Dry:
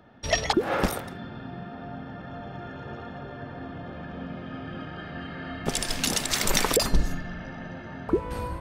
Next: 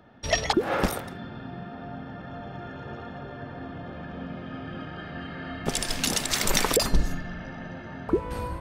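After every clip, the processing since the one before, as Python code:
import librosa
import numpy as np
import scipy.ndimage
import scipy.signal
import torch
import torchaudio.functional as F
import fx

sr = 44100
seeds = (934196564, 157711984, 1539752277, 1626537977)

y = x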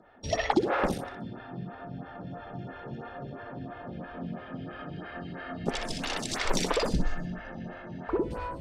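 y = fx.air_absorb(x, sr, metres=73.0)
y = fx.echo_feedback(y, sr, ms=62, feedback_pct=29, wet_db=-6.0)
y = fx.stagger_phaser(y, sr, hz=3.0)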